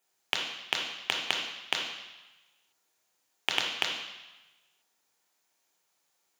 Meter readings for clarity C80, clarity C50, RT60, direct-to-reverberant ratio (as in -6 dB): 6.5 dB, 3.5 dB, 1.1 s, 0.0 dB